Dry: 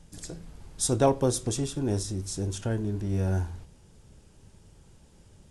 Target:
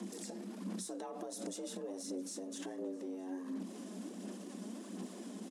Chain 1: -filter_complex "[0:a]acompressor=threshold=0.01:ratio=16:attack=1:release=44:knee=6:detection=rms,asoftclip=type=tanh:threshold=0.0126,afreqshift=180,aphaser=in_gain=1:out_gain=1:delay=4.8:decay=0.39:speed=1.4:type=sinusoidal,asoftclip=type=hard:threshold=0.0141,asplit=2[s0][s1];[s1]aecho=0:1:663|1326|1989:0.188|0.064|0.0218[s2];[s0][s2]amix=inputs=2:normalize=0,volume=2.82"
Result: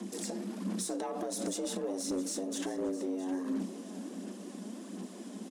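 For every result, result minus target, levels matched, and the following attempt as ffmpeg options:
compression: peak gain reduction -9 dB; echo-to-direct +8 dB
-filter_complex "[0:a]acompressor=threshold=0.00335:ratio=16:attack=1:release=44:knee=6:detection=rms,asoftclip=type=tanh:threshold=0.0126,afreqshift=180,aphaser=in_gain=1:out_gain=1:delay=4.8:decay=0.39:speed=1.4:type=sinusoidal,asoftclip=type=hard:threshold=0.0141,asplit=2[s0][s1];[s1]aecho=0:1:663|1326|1989:0.188|0.064|0.0218[s2];[s0][s2]amix=inputs=2:normalize=0,volume=2.82"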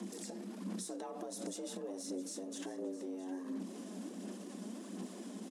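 echo-to-direct +8 dB
-filter_complex "[0:a]acompressor=threshold=0.00335:ratio=16:attack=1:release=44:knee=6:detection=rms,asoftclip=type=tanh:threshold=0.0126,afreqshift=180,aphaser=in_gain=1:out_gain=1:delay=4.8:decay=0.39:speed=1.4:type=sinusoidal,asoftclip=type=hard:threshold=0.0141,asplit=2[s0][s1];[s1]aecho=0:1:663|1326:0.075|0.0255[s2];[s0][s2]amix=inputs=2:normalize=0,volume=2.82"

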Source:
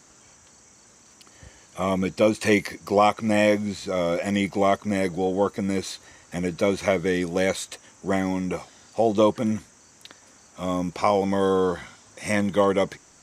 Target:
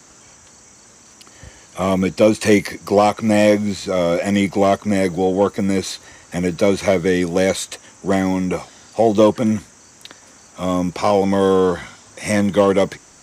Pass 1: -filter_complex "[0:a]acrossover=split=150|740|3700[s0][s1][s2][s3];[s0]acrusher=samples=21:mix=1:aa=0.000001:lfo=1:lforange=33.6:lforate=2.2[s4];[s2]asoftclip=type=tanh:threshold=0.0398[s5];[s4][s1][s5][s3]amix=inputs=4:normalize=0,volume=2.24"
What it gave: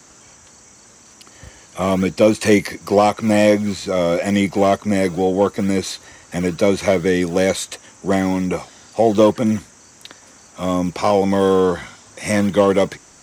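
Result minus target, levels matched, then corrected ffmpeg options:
decimation with a swept rate: distortion +15 dB
-filter_complex "[0:a]acrossover=split=150|740|3700[s0][s1][s2][s3];[s0]acrusher=samples=4:mix=1:aa=0.000001:lfo=1:lforange=6.4:lforate=2.2[s4];[s2]asoftclip=type=tanh:threshold=0.0398[s5];[s4][s1][s5][s3]amix=inputs=4:normalize=0,volume=2.24"

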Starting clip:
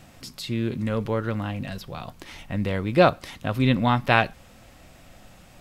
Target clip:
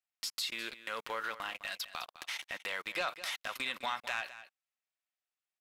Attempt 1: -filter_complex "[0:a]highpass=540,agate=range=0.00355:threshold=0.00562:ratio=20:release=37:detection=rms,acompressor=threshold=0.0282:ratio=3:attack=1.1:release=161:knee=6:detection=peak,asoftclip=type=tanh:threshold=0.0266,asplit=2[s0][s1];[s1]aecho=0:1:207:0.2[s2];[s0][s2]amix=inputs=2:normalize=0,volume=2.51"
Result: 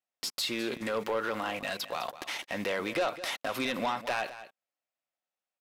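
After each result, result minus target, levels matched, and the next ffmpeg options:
500 Hz band +7.5 dB; compression: peak gain reduction -4 dB
-filter_complex "[0:a]highpass=1300,agate=range=0.00355:threshold=0.00562:ratio=20:release=37:detection=rms,acompressor=threshold=0.0282:ratio=3:attack=1.1:release=161:knee=6:detection=peak,asoftclip=type=tanh:threshold=0.0266,asplit=2[s0][s1];[s1]aecho=0:1:207:0.2[s2];[s0][s2]amix=inputs=2:normalize=0,volume=2.51"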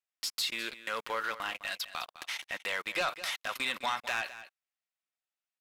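compression: peak gain reduction -5.5 dB
-filter_complex "[0:a]highpass=1300,agate=range=0.00355:threshold=0.00562:ratio=20:release=37:detection=rms,acompressor=threshold=0.0106:ratio=3:attack=1.1:release=161:knee=6:detection=peak,asoftclip=type=tanh:threshold=0.0266,asplit=2[s0][s1];[s1]aecho=0:1:207:0.2[s2];[s0][s2]amix=inputs=2:normalize=0,volume=2.51"

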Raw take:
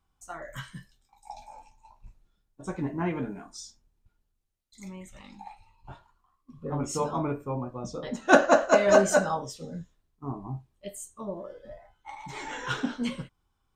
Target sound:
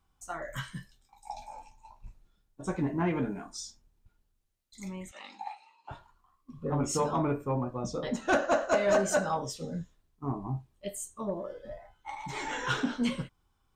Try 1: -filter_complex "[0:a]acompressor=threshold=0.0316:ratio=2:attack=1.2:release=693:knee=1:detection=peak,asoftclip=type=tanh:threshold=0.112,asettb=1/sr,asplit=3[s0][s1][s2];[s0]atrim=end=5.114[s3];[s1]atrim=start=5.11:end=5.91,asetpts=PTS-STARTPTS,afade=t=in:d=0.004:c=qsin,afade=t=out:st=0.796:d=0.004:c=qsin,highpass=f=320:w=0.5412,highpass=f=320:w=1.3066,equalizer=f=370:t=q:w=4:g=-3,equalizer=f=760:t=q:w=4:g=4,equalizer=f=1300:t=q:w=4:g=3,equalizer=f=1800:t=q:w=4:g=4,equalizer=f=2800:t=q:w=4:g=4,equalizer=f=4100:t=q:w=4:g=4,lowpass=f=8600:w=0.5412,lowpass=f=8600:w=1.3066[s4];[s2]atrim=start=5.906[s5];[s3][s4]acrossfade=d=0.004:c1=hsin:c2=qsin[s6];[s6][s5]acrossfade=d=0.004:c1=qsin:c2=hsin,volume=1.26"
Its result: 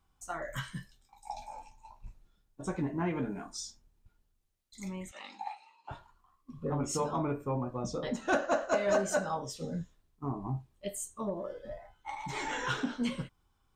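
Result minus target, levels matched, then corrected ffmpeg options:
compression: peak gain reduction +4 dB
-filter_complex "[0:a]acompressor=threshold=0.0794:ratio=2:attack=1.2:release=693:knee=1:detection=peak,asoftclip=type=tanh:threshold=0.112,asettb=1/sr,asplit=3[s0][s1][s2];[s0]atrim=end=5.114[s3];[s1]atrim=start=5.11:end=5.91,asetpts=PTS-STARTPTS,afade=t=in:d=0.004:c=qsin,afade=t=out:st=0.796:d=0.004:c=qsin,highpass=f=320:w=0.5412,highpass=f=320:w=1.3066,equalizer=f=370:t=q:w=4:g=-3,equalizer=f=760:t=q:w=4:g=4,equalizer=f=1300:t=q:w=4:g=3,equalizer=f=1800:t=q:w=4:g=4,equalizer=f=2800:t=q:w=4:g=4,equalizer=f=4100:t=q:w=4:g=4,lowpass=f=8600:w=0.5412,lowpass=f=8600:w=1.3066[s4];[s2]atrim=start=5.906[s5];[s3][s4]acrossfade=d=0.004:c1=hsin:c2=qsin[s6];[s6][s5]acrossfade=d=0.004:c1=qsin:c2=hsin,volume=1.26"

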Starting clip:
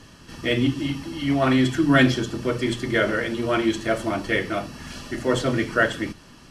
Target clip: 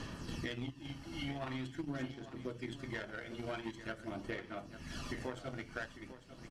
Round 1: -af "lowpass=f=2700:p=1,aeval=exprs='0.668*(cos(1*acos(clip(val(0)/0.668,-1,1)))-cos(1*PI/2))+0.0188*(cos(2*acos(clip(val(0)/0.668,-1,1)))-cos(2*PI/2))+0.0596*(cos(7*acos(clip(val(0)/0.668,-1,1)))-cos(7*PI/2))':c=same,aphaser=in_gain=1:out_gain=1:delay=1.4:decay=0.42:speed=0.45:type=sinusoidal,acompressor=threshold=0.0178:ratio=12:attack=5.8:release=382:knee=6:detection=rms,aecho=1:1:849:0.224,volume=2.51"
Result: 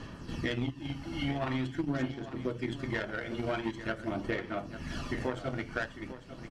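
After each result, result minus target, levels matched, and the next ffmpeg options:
compression: peak gain reduction -8.5 dB; 8 kHz band -6.5 dB
-af "lowpass=f=2700:p=1,aeval=exprs='0.668*(cos(1*acos(clip(val(0)/0.668,-1,1)))-cos(1*PI/2))+0.0188*(cos(2*acos(clip(val(0)/0.668,-1,1)))-cos(2*PI/2))+0.0596*(cos(7*acos(clip(val(0)/0.668,-1,1)))-cos(7*PI/2))':c=same,aphaser=in_gain=1:out_gain=1:delay=1.4:decay=0.42:speed=0.45:type=sinusoidal,acompressor=threshold=0.00631:ratio=12:attack=5.8:release=382:knee=6:detection=rms,aecho=1:1:849:0.224,volume=2.51"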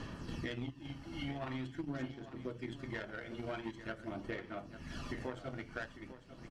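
8 kHz band -5.5 dB
-af "lowpass=f=7900:p=1,aeval=exprs='0.668*(cos(1*acos(clip(val(0)/0.668,-1,1)))-cos(1*PI/2))+0.0188*(cos(2*acos(clip(val(0)/0.668,-1,1)))-cos(2*PI/2))+0.0596*(cos(7*acos(clip(val(0)/0.668,-1,1)))-cos(7*PI/2))':c=same,aphaser=in_gain=1:out_gain=1:delay=1.4:decay=0.42:speed=0.45:type=sinusoidal,acompressor=threshold=0.00631:ratio=12:attack=5.8:release=382:knee=6:detection=rms,aecho=1:1:849:0.224,volume=2.51"

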